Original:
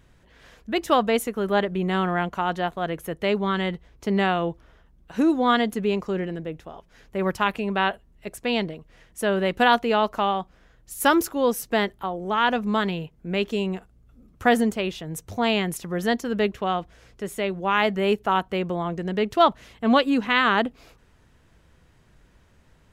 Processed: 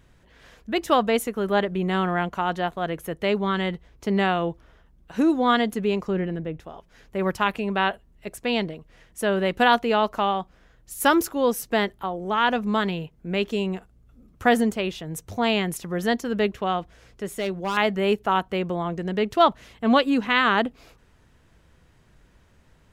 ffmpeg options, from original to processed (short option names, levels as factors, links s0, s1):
-filter_complex "[0:a]asettb=1/sr,asplit=3[s0][s1][s2];[s0]atrim=end=6.084[s3];[s1]atrim=start=6.08:end=6.6,asetpts=PTS-STARTPTS,afade=t=in:d=0.004:c=qsin,afade=t=out:st=0.516:d=0.004:c=qsin,bass=f=250:g=4,treble=f=4000:g=-8[s4];[s2]atrim=start=6.596[s5];[s3][s4]acrossfade=d=0.004:c1=hsin:c2=qsin[s6];[s6][s5]acrossfade=d=0.004:c1=qsin:c2=hsin,asettb=1/sr,asplit=3[s7][s8][s9];[s7]atrim=end=17.254[s10];[s8]atrim=start=17.25:end=17.77,asetpts=PTS-STARTPTS,afade=t=in:d=0.004:c=qsin,afade=t=out:st=0.516:d=0.004:c=qsin,asoftclip=type=hard:threshold=0.0794[s11];[s9]atrim=start=17.766[s12];[s10][s11]acrossfade=d=0.004:c1=hsin:c2=qsin[s13];[s13][s12]acrossfade=d=0.004:c1=qsin:c2=hsin"